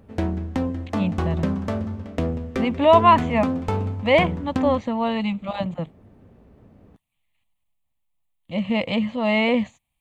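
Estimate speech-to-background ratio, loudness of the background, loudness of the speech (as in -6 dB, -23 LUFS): 5.0 dB, -27.0 LUFS, -22.0 LUFS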